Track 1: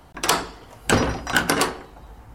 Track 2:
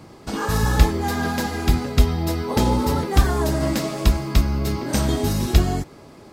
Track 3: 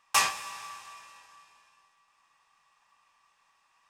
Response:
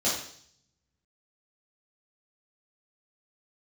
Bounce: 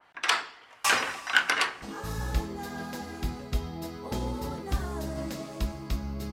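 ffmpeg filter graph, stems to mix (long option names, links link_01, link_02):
-filter_complex "[0:a]bandpass=frequency=2000:width_type=q:width=1.3:csg=0,adynamicequalizer=threshold=0.0158:dfrequency=2300:dqfactor=0.7:tfrequency=2300:tqfactor=0.7:attack=5:release=100:ratio=0.375:range=2:mode=boostabove:tftype=highshelf,volume=-0.5dB[link_01];[1:a]adelay=1550,volume=-14.5dB,asplit=2[link_02][link_03];[link_03]volume=-20.5dB[link_04];[2:a]adelay=700,volume=-3dB[link_05];[3:a]atrim=start_sample=2205[link_06];[link_04][link_06]afir=irnorm=-1:irlink=0[link_07];[link_01][link_02][link_05][link_07]amix=inputs=4:normalize=0"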